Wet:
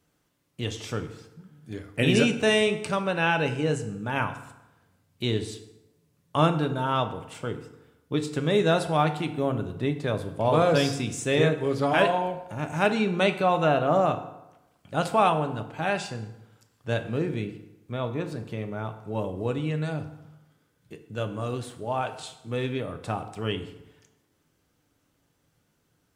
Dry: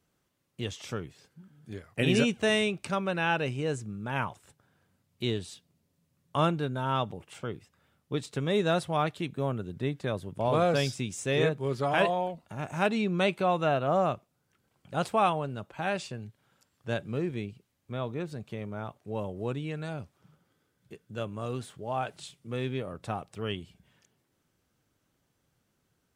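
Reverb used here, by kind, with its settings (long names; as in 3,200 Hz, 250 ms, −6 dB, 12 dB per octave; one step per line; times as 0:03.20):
feedback delay network reverb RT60 0.95 s, low-frequency decay 0.95×, high-frequency decay 0.7×, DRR 7 dB
level +3.5 dB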